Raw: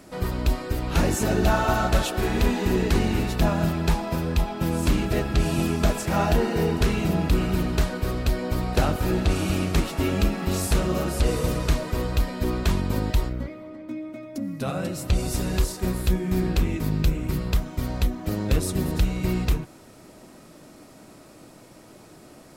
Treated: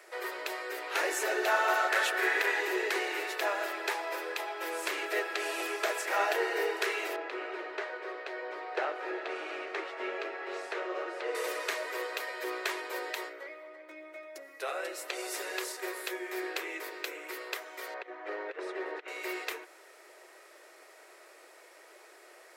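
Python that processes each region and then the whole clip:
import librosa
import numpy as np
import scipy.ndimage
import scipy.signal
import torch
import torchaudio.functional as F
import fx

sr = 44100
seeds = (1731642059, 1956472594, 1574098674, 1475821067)

y = fx.chain(x, sr, fx.peak_eq(hz=1700.0, db=6.5, octaves=0.76),
    fx.clip_hard(threshold_db=-15.0), at=(1.9, 2.61))
y = fx.chain(y, sr, fx.brickwall_highpass(low_hz=170.0),
    fx.spacing_loss(db_at_10k=26),
    fx.doubler(ms=15.0, db=-12), at=(7.16, 11.35))
y = fx.chain(y, sr, fx.lowpass(hz=2100.0, slope=12),
    fx.over_compress(threshold_db=-23.0, ratio=-0.5), at=(17.94, 19.08))
y = scipy.signal.sosfilt(scipy.signal.butter(12, 360.0, 'highpass', fs=sr, output='sos'), y)
y = fx.peak_eq(y, sr, hz=1900.0, db=10.5, octaves=0.82)
y = F.gain(torch.from_numpy(y), -6.0).numpy()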